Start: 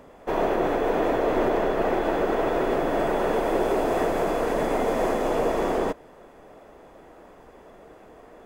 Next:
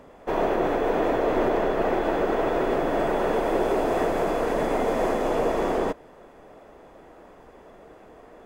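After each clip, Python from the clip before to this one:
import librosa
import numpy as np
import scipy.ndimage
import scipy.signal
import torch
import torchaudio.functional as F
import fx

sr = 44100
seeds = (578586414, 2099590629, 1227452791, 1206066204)

y = fx.high_shelf(x, sr, hz=8200.0, db=-4.0)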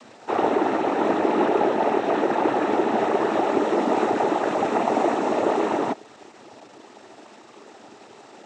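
y = x + 0.88 * np.pad(x, (int(3.0 * sr / 1000.0), 0))[:len(x)]
y = fx.quant_dither(y, sr, seeds[0], bits=8, dither='none')
y = fx.noise_vocoder(y, sr, seeds[1], bands=12)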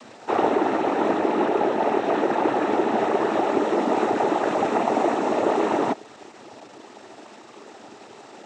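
y = fx.rider(x, sr, range_db=3, speed_s=0.5)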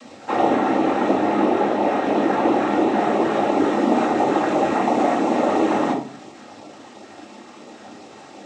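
y = fx.filter_lfo_notch(x, sr, shape='sine', hz=2.9, low_hz=340.0, high_hz=1700.0, q=2.6)
y = fx.room_shoebox(y, sr, seeds[2], volume_m3=400.0, walls='furnished', distance_m=2.2)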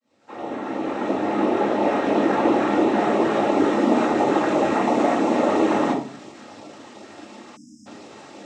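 y = fx.fade_in_head(x, sr, length_s=1.85)
y = fx.notch(y, sr, hz=760.0, q=12.0)
y = fx.spec_erase(y, sr, start_s=7.56, length_s=0.3, low_hz=320.0, high_hz=4900.0)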